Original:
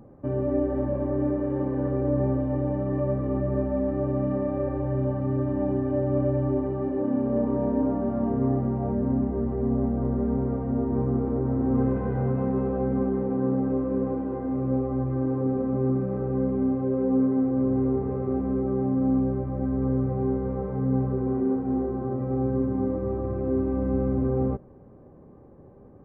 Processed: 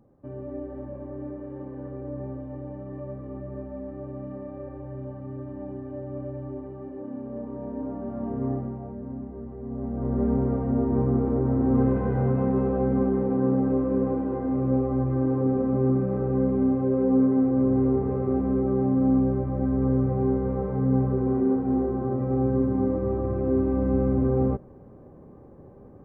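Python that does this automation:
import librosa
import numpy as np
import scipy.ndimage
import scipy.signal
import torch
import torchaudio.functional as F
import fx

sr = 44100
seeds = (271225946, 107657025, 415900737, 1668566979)

y = fx.gain(x, sr, db=fx.line((7.51, -10.5), (8.52, -3.5), (8.91, -11.0), (9.64, -11.0), (10.22, 2.0)))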